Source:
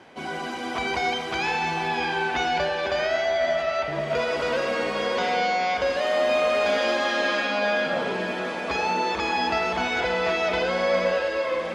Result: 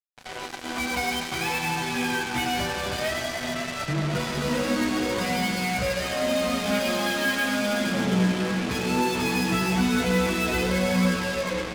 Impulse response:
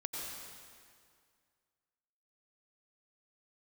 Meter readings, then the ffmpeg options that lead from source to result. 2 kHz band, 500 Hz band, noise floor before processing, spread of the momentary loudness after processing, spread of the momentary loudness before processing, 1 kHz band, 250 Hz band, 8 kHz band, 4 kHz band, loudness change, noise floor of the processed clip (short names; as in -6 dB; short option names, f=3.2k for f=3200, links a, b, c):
-1.5 dB, -5.0 dB, -31 dBFS, 5 LU, 5 LU, -4.5 dB, +8.5 dB, +9.0 dB, +0.5 dB, -1.0 dB, -35 dBFS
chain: -filter_complex "[0:a]highpass=f=82:w=0.5412,highpass=f=82:w=1.3066,asubboost=boost=11:cutoff=180,flanger=delay=0.6:depth=9.9:regen=-1:speed=0.18:shape=triangular,asplit=2[a][b];[b]adelay=16,volume=-2.5dB[c];[a][c]amix=inputs=2:normalize=0,asplit=2[d][e];[1:a]atrim=start_sample=2205,highshelf=f=5.6k:g=8.5[f];[e][f]afir=irnorm=-1:irlink=0,volume=-1.5dB[g];[d][g]amix=inputs=2:normalize=0,acrusher=bits=3:mix=0:aa=0.5,volume=-5.5dB"